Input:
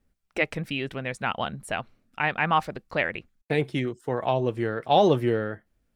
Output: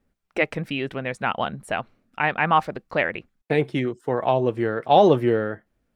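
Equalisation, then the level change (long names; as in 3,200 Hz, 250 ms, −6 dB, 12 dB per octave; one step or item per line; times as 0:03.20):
low-shelf EQ 120 Hz −8 dB
high-shelf EQ 2,800 Hz −8 dB
+5.0 dB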